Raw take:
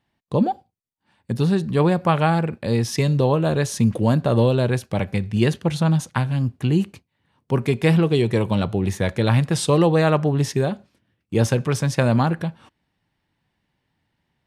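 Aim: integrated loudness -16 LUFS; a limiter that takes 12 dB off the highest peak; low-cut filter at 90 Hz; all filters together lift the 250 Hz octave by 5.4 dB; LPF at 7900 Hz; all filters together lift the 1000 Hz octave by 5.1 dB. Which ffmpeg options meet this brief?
-af "highpass=90,lowpass=7.9k,equalizer=f=250:t=o:g=7.5,equalizer=f=1k:t=o:g=6,volume=6.5dB,alimiter=limit=-5dB:level=0:latency=1"

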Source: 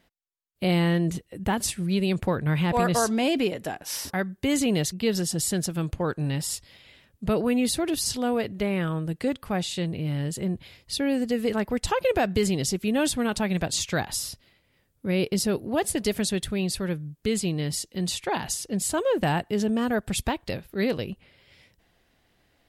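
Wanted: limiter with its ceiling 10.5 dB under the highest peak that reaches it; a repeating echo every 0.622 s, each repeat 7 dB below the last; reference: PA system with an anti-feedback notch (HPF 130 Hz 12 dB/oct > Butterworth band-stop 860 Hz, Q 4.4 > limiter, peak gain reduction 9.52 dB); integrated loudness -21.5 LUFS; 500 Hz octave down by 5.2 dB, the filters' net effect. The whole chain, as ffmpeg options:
-af "equalizer=f=500:t=o:g=-6.5,alimiter=limit=-23dB:level=0:latency=1,highpass=130,asuperstop=centerf=860:order=8:qfactor=4.4,aecho=1:1:622|1244|1866|2488|3110:0.447|0.201|0.0905|0.0407|0.0183,volume=15.5dB,alimiter=limit=-13dB:level=0:latency=1"

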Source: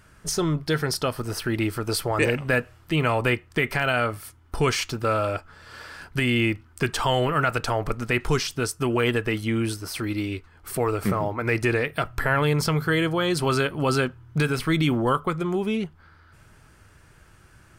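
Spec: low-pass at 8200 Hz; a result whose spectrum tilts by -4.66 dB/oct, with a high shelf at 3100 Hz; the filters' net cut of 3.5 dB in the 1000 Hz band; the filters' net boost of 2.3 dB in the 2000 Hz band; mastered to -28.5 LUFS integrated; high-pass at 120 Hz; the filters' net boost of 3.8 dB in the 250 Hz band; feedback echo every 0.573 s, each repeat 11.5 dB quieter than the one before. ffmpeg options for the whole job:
-af "highpass=120,lowpass=8.2k,equalizer=f=250:t=o:g=6,equalizer=f=1k:t=o:g=-7.5,equalizer=f=2k:t=o:g=3,highshelf=f=3.1k:g=6,aecho=1:1:573|1146|1719:0.266|0.0718|0.0194,volume=-6dB"

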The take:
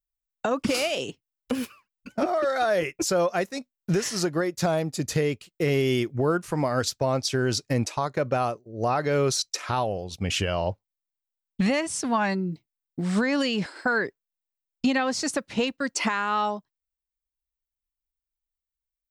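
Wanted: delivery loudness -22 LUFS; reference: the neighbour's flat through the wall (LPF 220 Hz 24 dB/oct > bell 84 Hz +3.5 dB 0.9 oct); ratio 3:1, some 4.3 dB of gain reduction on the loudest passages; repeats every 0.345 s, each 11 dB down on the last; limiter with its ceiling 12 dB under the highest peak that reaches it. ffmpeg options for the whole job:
-af "acompressor=threshold=-25dB:ratio=3,alimiter=level_in=3.5dB:limit=-24dB:level=0:latency=1,volume=-3.5dB,lowpass=f=220:w=0.5412,lowpass=f=220:w=1.3066,equalizer=f=84:t=o:w=0.9:g=3.5,aecho=1:1:345|690|1035:0.282|0.0789|0.0221,volume=21dB"

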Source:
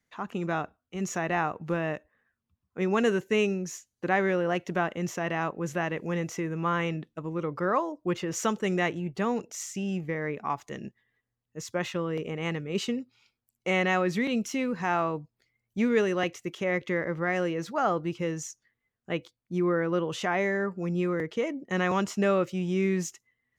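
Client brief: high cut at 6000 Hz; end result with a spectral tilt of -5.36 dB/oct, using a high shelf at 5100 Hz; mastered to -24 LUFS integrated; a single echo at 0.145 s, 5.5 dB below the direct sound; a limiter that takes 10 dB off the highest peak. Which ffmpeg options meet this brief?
-af "lowpass=6k,highshelf=f=5.1k:g=4,alimiter=limit=-22.5dB:level=0:latency=1,aecho=1:1:145:0.531,volume=8dB"

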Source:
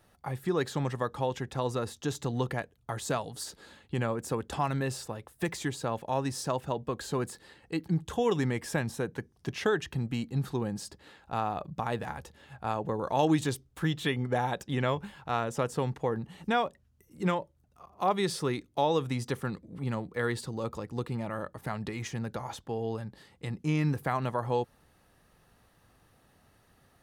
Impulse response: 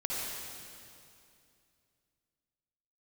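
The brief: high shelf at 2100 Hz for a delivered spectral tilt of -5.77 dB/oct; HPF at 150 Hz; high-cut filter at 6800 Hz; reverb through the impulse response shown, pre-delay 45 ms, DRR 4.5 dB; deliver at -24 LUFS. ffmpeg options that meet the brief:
-filter_complex "[0:a]highpass=150,lowpass=6.8k,highshelf=f=2.1k:g=-6,asplit=2[a][b];[1:a]atrim=start_sample=2205,adelay=45[c];[b][c]afir=irnorm=-1:irlink=0,volume=-10dB[d];[a][d]amix=inputs=2:normalize=0,volume=8.5dB"

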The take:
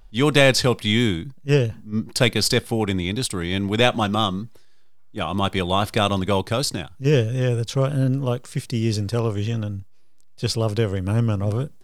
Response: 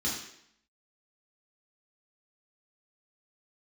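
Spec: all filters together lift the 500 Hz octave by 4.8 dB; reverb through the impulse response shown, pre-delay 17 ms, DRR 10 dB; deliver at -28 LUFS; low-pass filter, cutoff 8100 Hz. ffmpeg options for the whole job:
-filter_complex "[0:a]lowpass=8.1k,equalizer=f=500:t=o:g=5.5,asplit=2[a][b];[1:a]atrim=start_sample=2205,adelay=17[c];[b][c]afir=irnorm=-1:irlink=0,volume=-16dB[d];[a][d]amix=inputs=2:normalize=0,volume=-9dB"

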